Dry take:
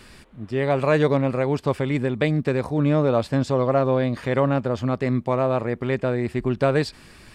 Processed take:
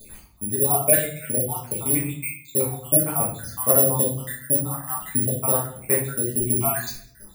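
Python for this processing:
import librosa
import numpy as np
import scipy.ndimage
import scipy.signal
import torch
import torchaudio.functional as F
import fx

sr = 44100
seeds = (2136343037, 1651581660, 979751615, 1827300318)

y = fx.spec_dropout(x, sr, seeds[0], share_pct=76)
y = (np.kron(scipy.signal.resample_poly(y, 1, 4), np.eye(4)[0]) * 4)[:len(y)]
y = fx.room_shoebox(y, sr, seeds[1], volume_m3=76.0, walls='mixed', distance_m=1.5)
y = y * 10.0 ** (-5.5 / 20.0)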